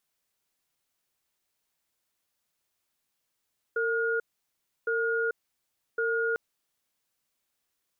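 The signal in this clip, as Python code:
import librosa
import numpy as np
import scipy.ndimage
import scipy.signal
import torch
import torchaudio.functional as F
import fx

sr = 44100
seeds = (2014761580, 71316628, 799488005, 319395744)

y = fx.cadence(sr, length_s=2.6, low_hz=456.0, high_hz=1430.0, on_s=0.44, off_s=0.67, level_db=-27.5)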